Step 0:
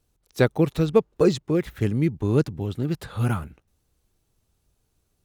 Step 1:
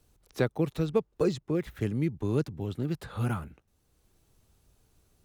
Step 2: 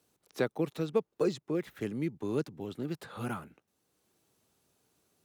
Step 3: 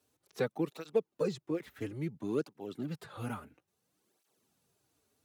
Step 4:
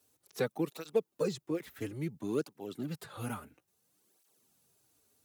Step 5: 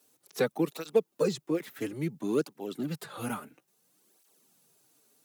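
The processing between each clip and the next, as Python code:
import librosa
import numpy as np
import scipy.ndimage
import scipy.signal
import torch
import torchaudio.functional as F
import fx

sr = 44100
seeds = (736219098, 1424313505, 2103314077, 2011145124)

y1 = fx.band_squash(x, sr, depth_pct=40)
y1 = y1 * librosa.db_to_amplitude(-7.0)
y2 = scipy.signal.sosfilt(scipy.signal.butter(2, 200.0, 'highpass', fs=sr, output='sos'), y1)
y2 = y2 * librosa.db_to_amplitude(-2.0)
y3 = fx.flanger_cancel(y2, sr, hz=0.59, depth_ms=6.2)
y4 = fx.high_shelf(y3, sr, hz=6200.0, db=10.0)
y5 = scipy.signal.sosfilt(scipy.signal.butter(4, 140.0, 'highpass', fs=sr, output='sos'), y4)
y5 = y5 * librosa.db_to_amplitude(5.0)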